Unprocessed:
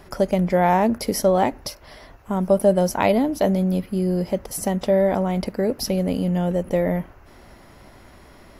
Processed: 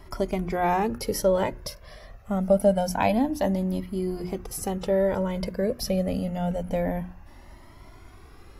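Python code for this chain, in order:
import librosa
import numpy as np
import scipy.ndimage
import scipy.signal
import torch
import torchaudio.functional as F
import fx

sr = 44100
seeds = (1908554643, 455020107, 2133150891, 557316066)

y = fx.low_shelf(x, sr, hz=200.0, db=4.5)
y = fx.hum_notches(y, sr, base_hz=60, count=6)
y = fx.comb_cascade(y, sr, direction='rising', hz=0.26)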